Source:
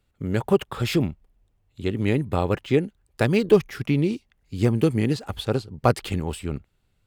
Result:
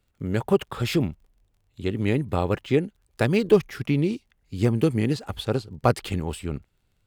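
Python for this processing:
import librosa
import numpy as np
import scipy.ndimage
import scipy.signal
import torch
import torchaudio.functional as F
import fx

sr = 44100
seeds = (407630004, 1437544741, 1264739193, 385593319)

y = fx.dmg_crackle(x, sr, seeds[0], per_s=33.0, level_db=-52.0)
y = y * librosa.db_to_amplitude(-1.0)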